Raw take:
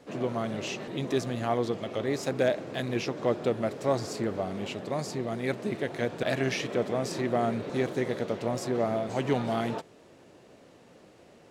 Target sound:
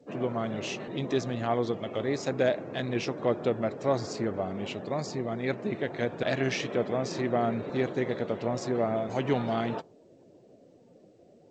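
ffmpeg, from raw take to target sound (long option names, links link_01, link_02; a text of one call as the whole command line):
ffmpeg -i in.wav -af "afftdn=noise_reduction=18:noise_floor=-51" -ar 16000 -c:a g722 out.g722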